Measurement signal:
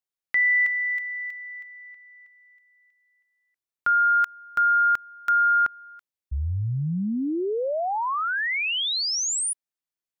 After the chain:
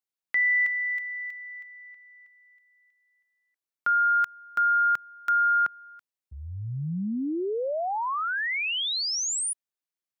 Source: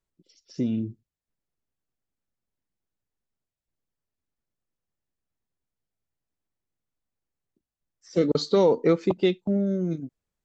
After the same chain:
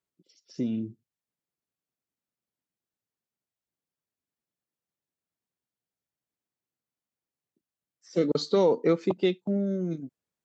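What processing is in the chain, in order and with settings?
high-pass filter 130 Hz 12 dB per octave
level −2.5 dB

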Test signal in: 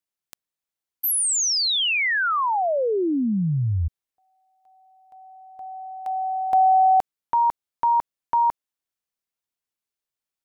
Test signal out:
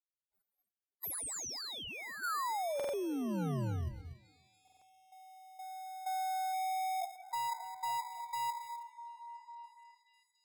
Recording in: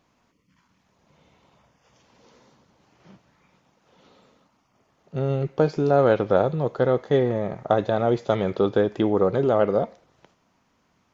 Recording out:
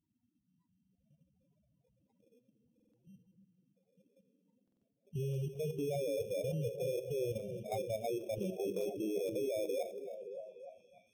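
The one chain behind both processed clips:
peak hold with a decay on every bin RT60 0.35 s
parametric band 2,500 Hz −12.5 dB 1.7 octaves
tube saturation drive 24 dB, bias 0.35
reverb whose tail is shaped and stops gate 290 ms rising, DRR 11.5 dB
spectral peaks only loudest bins 4
in parallel at −7 dB: decimation without filtering 15×
on the sum: output level in coarse steps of 10 dB
high-shelf EQ 4,400 Hz +7.5 dB
on a send: echo through a band-pass that steps 288 ms, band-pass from 260 Hz, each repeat 0.7 octaves, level −6 dB
on the sum: buffer that repeats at 0:02.75/0:04.63, samples 2,048, times 3
level −6 dB
AAC 64 kbit/s 48,000 Hz

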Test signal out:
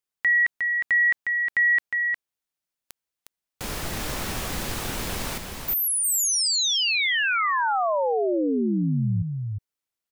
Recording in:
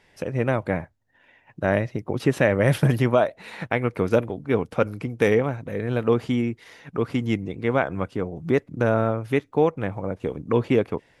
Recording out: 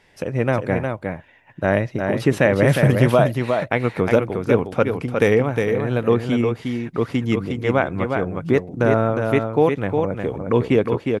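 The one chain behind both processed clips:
single-tap delay 359 ms −5 dB
level +3 dB

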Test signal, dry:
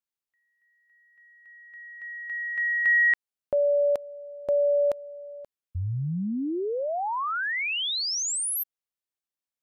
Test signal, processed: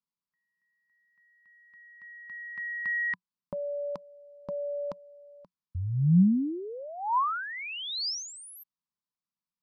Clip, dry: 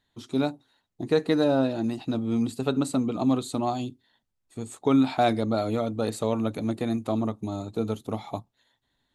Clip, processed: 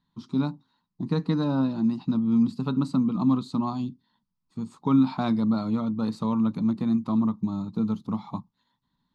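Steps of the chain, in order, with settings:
drawn EQ curve 110 Hz 0 dB, 180 Hz +14 dB, 380 Hz −6 dB, 700 Hz −10 dB, 1,000 Hz +8 dB, 1,700 Hz −7 dB, 3,300 Hz −6 dB, 4,900 Hz +1 dB, 7,400 Hz −14 dB, 12,000 Hz −17 dB
level −2.5 dB

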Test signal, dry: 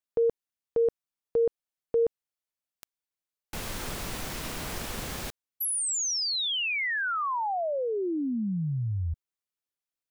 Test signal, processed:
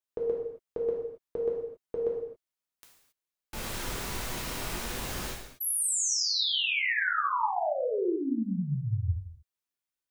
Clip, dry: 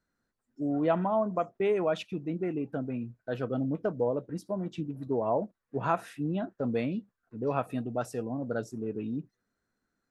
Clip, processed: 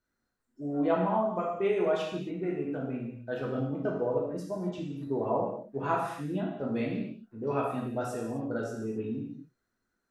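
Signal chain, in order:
reverb whose tail is shaped and stops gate 300 ms falling, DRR −3.5 dB
level −4.5 dB

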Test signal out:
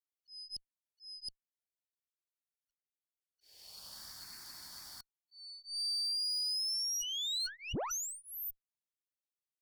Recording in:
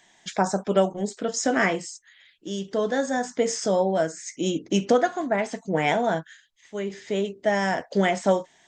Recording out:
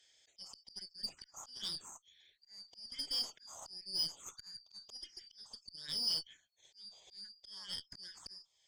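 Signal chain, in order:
band-splitting scrambler in four parts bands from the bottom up 4321
tape wow and flutter 15 cents
volume swells 580 ms
phaser swept by the level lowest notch 180 Hz, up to 2,000 Hz, full sweep at −26.5 dBFS
harmonic generator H 3 −26 dB, 5 −39 dB, 7 −42 dB, 8 −24 dB, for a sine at −16 dBFS
level −7 dB

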